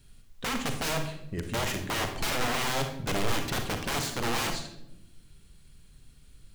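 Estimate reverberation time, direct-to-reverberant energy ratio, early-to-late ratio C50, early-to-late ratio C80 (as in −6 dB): 0.85 s, 5.0 dB, 7.0 dB, 10.5 dB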